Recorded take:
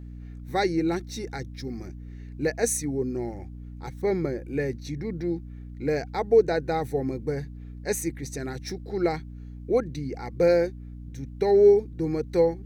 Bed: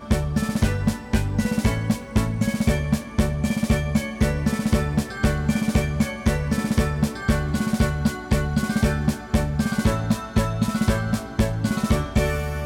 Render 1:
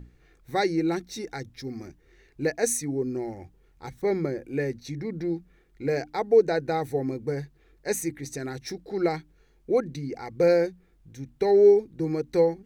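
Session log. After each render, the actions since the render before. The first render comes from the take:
mains-hum notches 60/120/180/240/300 Hz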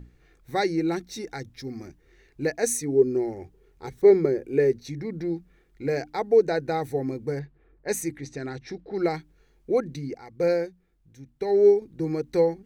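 0:02.72–0:04.85: parametric band 410 Hz +11.5 dB 0.36 octaves
0:07.39–0:09.15: low-pass that shuts in the quiet parts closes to 1,200 Hz, open at −25.5 dBFS
0:10.14–0:11.82: expander for the loud parts, over −27 dBFS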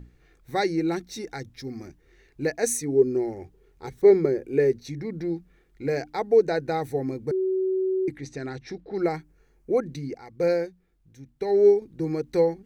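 0:07.31–0:08.08: beep over 377 Hz −21.5 dBFS
0:09.00–0:09.84: parametric band 3,600 Hz −8 dB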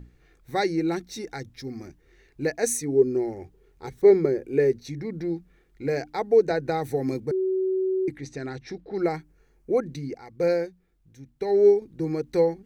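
0:06.50–0:07.20: multiband upward and downward compressor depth 100%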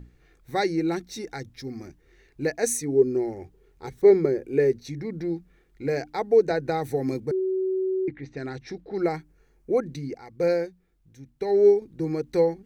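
0:07.39–0:08.37: Chebyshev low-pass filter 2,400 Hz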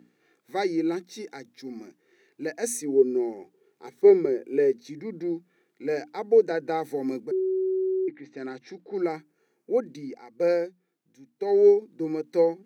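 high-pass filter 210 Hz 24 dB per octave
harmonic and percussive parts rebalanced percussive −6 dB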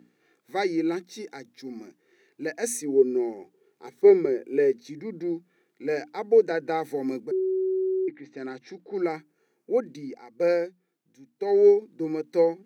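dynamic equaliser 2,100 Hz, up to +3 dB, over −41 dBFS, Q 0.9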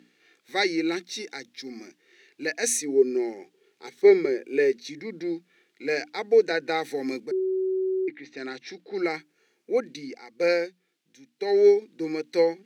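meter weighting curve D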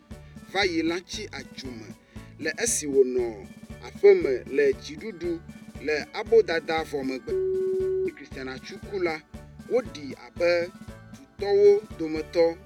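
mix in bed −22 dB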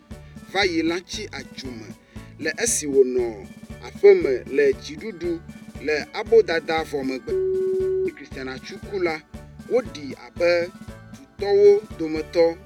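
level +3.5 dB

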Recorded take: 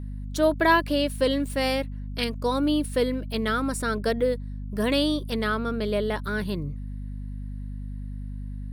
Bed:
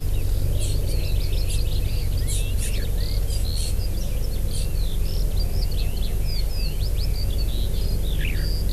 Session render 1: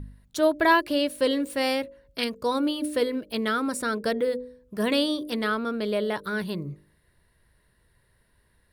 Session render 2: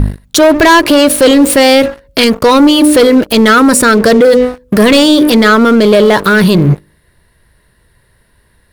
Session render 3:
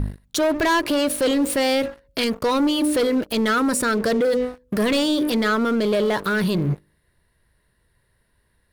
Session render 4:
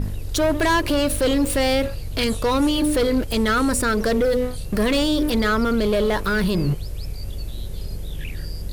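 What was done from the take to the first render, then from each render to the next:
hum removal 50 Hz, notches 12
leveller curve on the samples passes 3; boost into a limiter +19.5 dB
level −14 dB
mix in bed −6.5 dB

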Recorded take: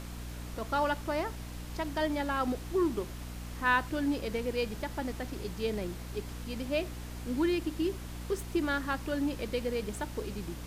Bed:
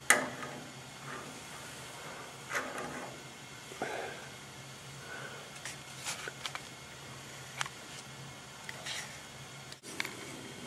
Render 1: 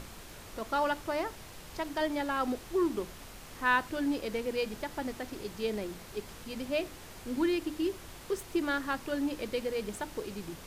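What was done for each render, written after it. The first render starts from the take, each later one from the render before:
mains-hum notches 60/120/180/240/300 Hz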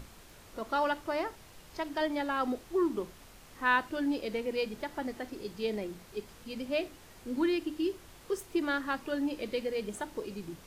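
noise reduction from a noise print 6 dB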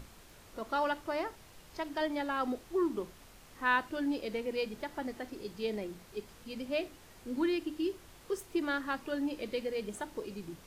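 level −2 dB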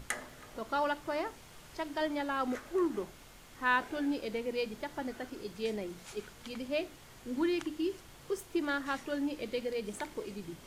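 mix in bed −12 dB

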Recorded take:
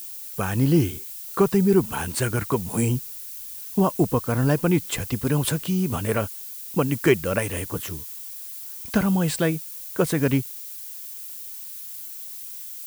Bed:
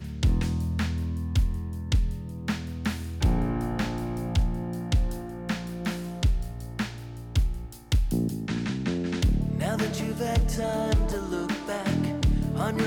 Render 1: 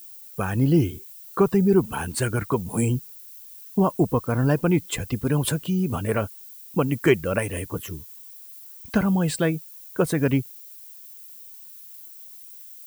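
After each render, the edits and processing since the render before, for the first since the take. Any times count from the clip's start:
broadband denoise 10 dB, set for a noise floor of −37 dBFS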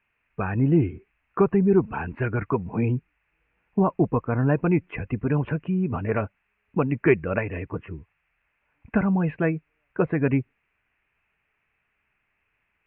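Chebyshev low-pass filter 2,600 Hz, order 6
notch filter 530 Hz, Q 12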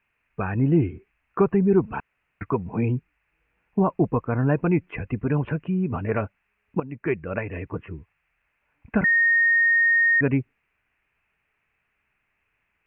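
0:02.00–0:02.41: fill with room tone
0:06.80–0:07.69: fade in, from −14 dB
0:09.04–0:10.21: beep over 1,850 Hz −15.5 dBFS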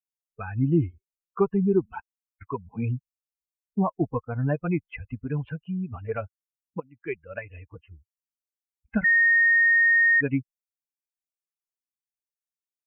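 spectral dynamics exaggerated over time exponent 2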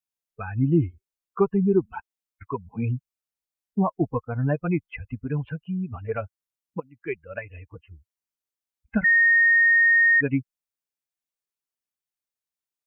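level +1.5 dB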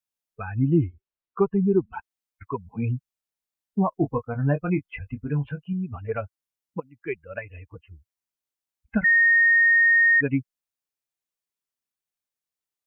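0:00.84–0:01.93: high-frequency loss of the air 260 metres
0:03.90–0:05.73: double-tracking delay 21 ms −8.5 dB

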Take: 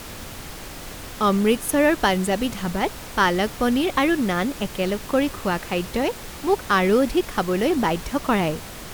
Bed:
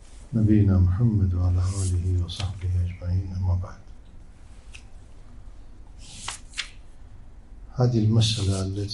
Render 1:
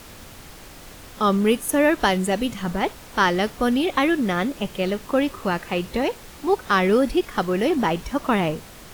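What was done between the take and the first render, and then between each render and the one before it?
noise reduction from a noise print 6 dB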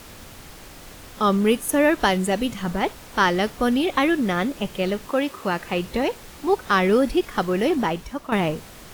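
0:05.09–0:05.59: high-pass filter 380 Hz → 130 Hz 6 dB per octave
0:07.71–0:08.32: fade out linear, to −10 dB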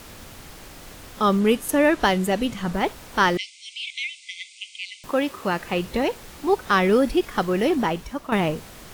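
0:01.39–0:02.74: linearly interpolated sample-rate reduction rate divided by 2×
0:03.37–0:05.04: linear-phase brick-wall band-pass 2,000–9,400 Hz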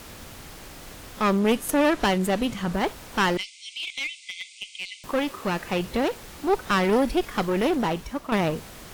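asymmetric clip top −26 dBFS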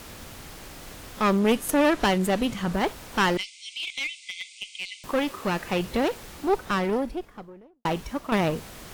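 0:06.23–0:07.85: fade out and dull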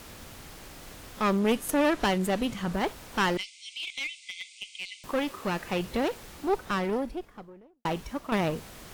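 level −3.5 dB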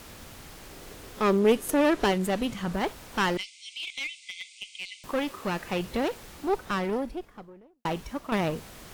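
0:00.69–0:02.12: parametric band 410 Hz +7.5 dB 0.54 octaves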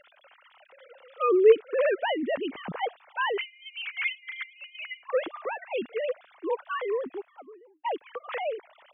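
three sine waves on the formant tracks

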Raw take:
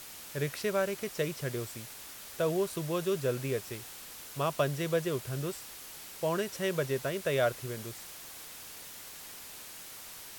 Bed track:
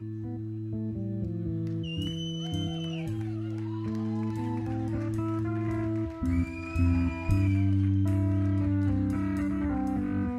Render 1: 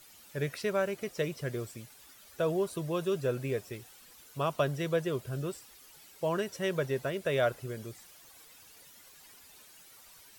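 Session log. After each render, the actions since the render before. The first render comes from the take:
broadband denoise 12 dB, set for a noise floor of −47 dBFS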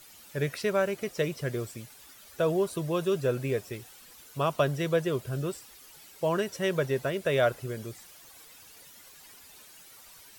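level +3.5 dB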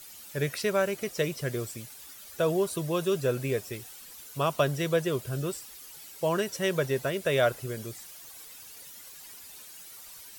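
high-shelf EQ 4,100 Hz +6.5 dB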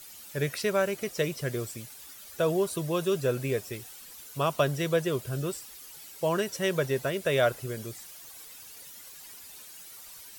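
no processing that can be heard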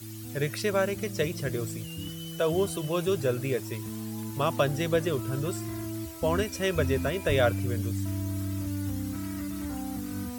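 mix in bed track −5.5 dB

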